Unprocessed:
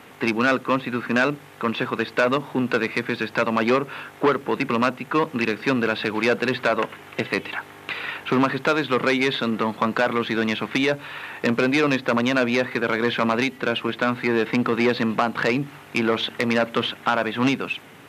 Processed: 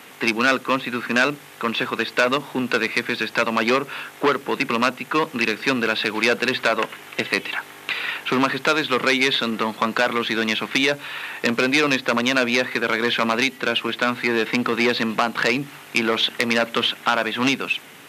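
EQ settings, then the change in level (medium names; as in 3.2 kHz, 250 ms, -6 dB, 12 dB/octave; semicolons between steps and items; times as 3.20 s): high-pass 140 Hz 12 dB/octave; treble shelf 2.1 kHz +10 dB; -1.0 dB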